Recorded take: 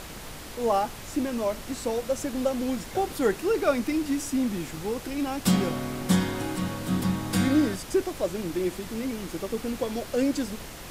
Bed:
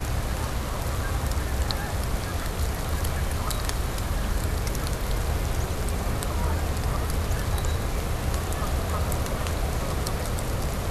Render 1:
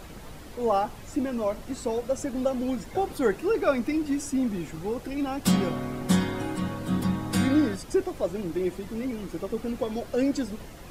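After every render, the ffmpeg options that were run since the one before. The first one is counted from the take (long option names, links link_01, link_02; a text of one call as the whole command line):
ffmpeg -i in.wav -af "afftdn=noise_reduction=9:noise_floor=-41" out.wav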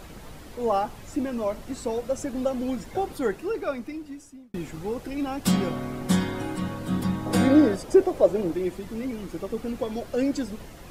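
ffmpeg -i in.wav -filter_complex "[0:a]asettb=1/sr,asplit=3[link_01][link_02][link_03];[link_01]atrim=end=7.264[link_04];[link_02]atrim=start=7.26:end=8.54,asetpts=PTS-STARTPTS,afade=type=in:duration=0.004:curve=qsin,afade=type=out:start_time=1.276:duration=0.004:curve=qsin,equalizer=frequency=530:width=0.84:gain=10[link_05];[link_03]atrim=start=8.536[link_06];[link_04][link_05]acrossfade=duration=0.004:curve1=hsin:curve2=qsin[link_07];[link_07][link_06]acrossfade=duration=0.004:curve1=qsin:curve2=hsin,asplit=2[link_08][link_09];[link_08]atrim=end=4.54,asetpts=PTS-STARTPTS,afade=type=out:start_time=2.91:duration=1.63[link_10];[link_09]atrim=start=4.54,asetpts=PTS-STARTPTS,afade=type=in:duration=0.004:curve=hsin[link_11];[link_10][link_11]concat=n=2:v=0:a=1" out.wav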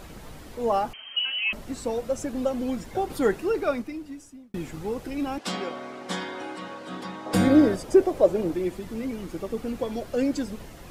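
ffmpeg -i in.wav -filter_complex "[0:a]asettb=1/sr,asplit=3[link_01][link_02][link_03];[link_01]atrim=end=0.934[link_04];[link_02]atrim=start=0.93:end=1.53,asetpts=PTS-STARTPTS,afade=type=in:duration=0.004:curve=qsin,afade=type=out:start_time=0.596:duration=0.004:curve=qsin,lowpass=frequency=2700:width_type=q:width=0.5098,lowpass=frequency=2700:width_type=q:width=0.6013,lowpass=frequency=2700:width_type=q:width=0.9,lowpass=frequency=2700:width_type=q:width=2.563,afreqshift=-3200[link_05];[link_03]atrim=start=1.526[link_06];[link_04][link_05]acrossfade=duration=0.004:curve1=hsin:curve2=qsin[link_07];[link_07][link_06]acrossfade=duration=0.004:curve1=qsin:curve2=hsin,asettb=1/sr,asplit=3[link_08][link_09][link_10];[link_08]atrim=end=5.384[link_11];[link_09]atrim=start=5.38:end=7.34,asetpts=PTS-STARTPTS,afade=type=in:duration=0.004:curve=qsin,afade=type=out:start_time=1.956:duration=0.004:curve=qsin,highpass=420,lowpass=5800[link_12];[link_10]atrim=start=7.336[link_13];[link_11][link_12]acrossfade=duration=0.004:curve1=hsin:curve2=qsin[link_14];[link_14][link_13]acrossfade=duration=0.004:curve1=qsin:curve2=hsin,asplit=3[link_15][link_16][link_17];[link_15]atrim=end=3.102[link_18];[link_16]atrim=start=3.098:end=3.822,asetpts=PTS-STARTPTS,volume=3.5dB[link_19];[link_17]atrim=start=3.818[link_20];[link_18][link_19]acrossfade=duration=0.004:curve1=hsin:curve2=hsin[link_21];[link_21][link_20]acrossfade=duration=0.004:curve1=hsin:curve2=hsin" out.wav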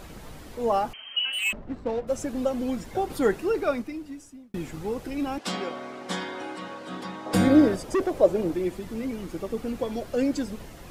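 ffmpeg -i in.wav -filter_complex "[0:a]asplit=3[link_01][link_02][link_03];[link_01]afade=type=out:start_time=1.32:duration=0.02[link_04];[link_02]adynamicsmooth=sensitivity=5.5:basefreq=810,afade=type=in:start_time=1.32:duration=0.02,afade=type=out:start_time=2.07:duration=0.02[link_05];[link_03]afade=type=in:start_time=2.07:duration=0.02[link_06];[link_04][link_05][link_06]amix=inputs=3:normalize=0,asettb=1/sr,asplit=3[link_07][link_08][link_09];[link_07]atrim=end=7.684[link_10];[link_08]atrim=start=7.68:end=8.12,asetpts=PTS-STARTPTS,afade=type=in:duration=0.004:curve=qsin,afade=type=out:start_time=0.436:duration=0.004:curve=qsin,volume=20dB,asoftclip=hard,volume=-20dB[link_11];[link_09]atrim=start=8.116[link_12];[link_10][link_11]acrossfade=duration=0.004:curve1=hsin:curve2=qsin[link_13];[link_13][link_12]acrossfade=duration=0.004:curve1=qsin:curve2=hsin" out.wav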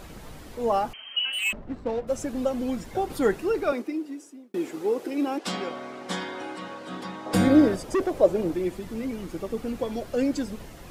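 ffmpeg -i in.wav -filter_complex "[0:a]asettb=1/sr,asplit=3[link_01][link_02][link_03];[link_01]atrim=end=3.724[link_04];[link_02]atrim=start=3.72:end=5.44,asetpts=PTS-STARTPTS,afade=type=in:duration=0.004:curve=qsin,afade=type=out:start_time=1.716:duration=0.004:curve=qsin,highpass=frequency=350:width_type=q:width=2.5[link_05];[link_03]atrim=start=5.436[link_06];[link_04][link_05]acrossfade=duration=0.004:curve1=hsin:curve2=qsin[link_07];[link_07][link_06]acrossfade=duration=0.004:curve1=qsin:curve2=hsin" out.wav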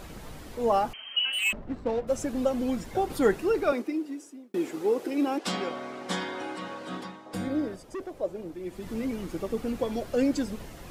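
ffmpeg -i in.wav -filter_complex "[0:a]asplit=3[link_01][link_02][link_03];[link_01]atrim=end=7.33,asetpts=PTS-STARTPTS,afade=type=out:start_time=6.96:duration=0.37:curve=qua:silence=0.251189[link_04];[link_02]atrim=start=7.33:end=8.52,asetpts=PTS-STARTPTS,volume=-12dB[link_05];[link_03]atrim=start=8.52,asetpts=PTS-STARTPTS,afade=type=in:duration=0.37:curve=qua:silence=0.251189[link_06];[link_04][link_05][link_06]concat=n=3:v=0:a=1" out.wav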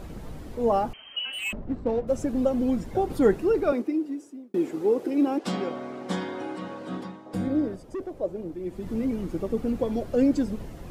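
ffmpeg -i in.wav -af "tiltshelf=frequency=770:gain=5.5" out.wav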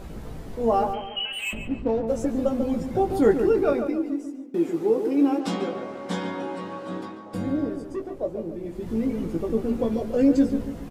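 ffmpeg -i in.wav -filter_complex "[0:a]asplit=2[link_01][link_02];[link_02]adelay=18,volume=-5.5dB[link_03];[link_01][link_03]amix=inputs=2:normalize=0,asplit=2[link_04][link_05];[link_05]adelay=142,lowpass=frequency=2500:poles=1,volume=-7.5dB,asplit=2[link_06][link_07];[link_07]adelay=142,lowpass=frequency=2500:poles=1,volume=0.44,asplit=2[link_08][link_09];[link_09]adelay=142,lowpass=frequency=2500:poles=1,volume=0.44,asplit=2[link_10][link_11];[link_11]adelay=142,lowpass=frequency=2500:poles=1,volume=0.44,asplit=2[link_12][link_13];[link_13]adelay=142,lowpass=frequency=2500:poles=1,volume=0.44[link_14];[link_06][link_08][link_10][link_12][link_14]amix=inputs=5:normalize=0[link_15];[link_04][link_15]amix=inputs=2:normalize=0" out.wav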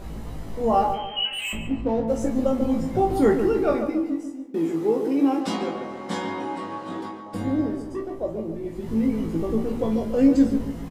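ffmpeg -i in.wav -filter_complex "[0:a]asplit=2[link_01][link_02];[link_02]adelay=36,volume=-11dB[link_03];[link_01][link_03]amix=inputs=2:normalize=0,asplit=2[link_04][link_05];[link_05]aecho=0:1:19|49:0.631|0.282[link_06];[link_04][link_06]amix=inputs=2:normalize=0" out.wav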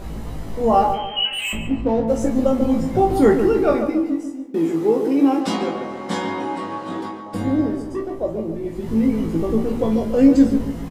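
ffmpeg -i in.wav -af "volume=4.5dB" out.wav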